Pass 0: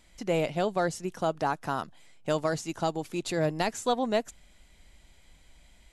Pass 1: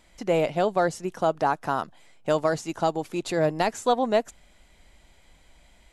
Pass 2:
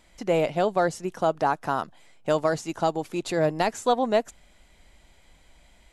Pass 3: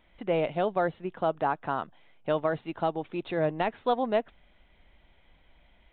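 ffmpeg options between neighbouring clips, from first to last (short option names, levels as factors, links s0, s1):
-af "equalizer=f=740:w=0.44:g=5.5"
-af anull
-af "aresample=8000,aresample=44100,volume=0.631"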